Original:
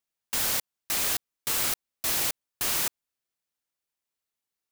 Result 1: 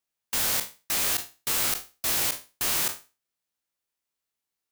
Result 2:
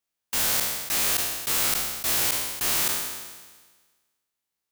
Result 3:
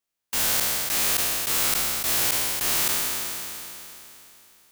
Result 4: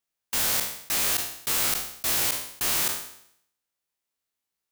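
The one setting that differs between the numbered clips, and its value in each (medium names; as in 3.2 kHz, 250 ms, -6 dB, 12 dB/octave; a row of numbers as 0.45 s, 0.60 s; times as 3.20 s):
spectral sustain, RT60: 0.3 s, 1.41 s, 3.11 s, 0.68 s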